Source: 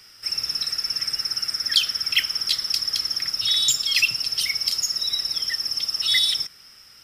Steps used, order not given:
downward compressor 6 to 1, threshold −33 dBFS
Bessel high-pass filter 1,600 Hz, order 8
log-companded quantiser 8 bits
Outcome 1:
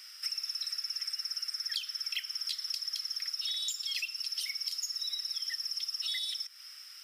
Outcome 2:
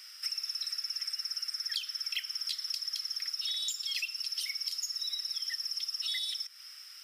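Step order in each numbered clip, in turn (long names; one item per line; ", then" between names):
downward compressor, then log-companded quantiser, then Bessel high-pass filter
log-companded quantiser, then Bessel high-pass filter, then downward compressor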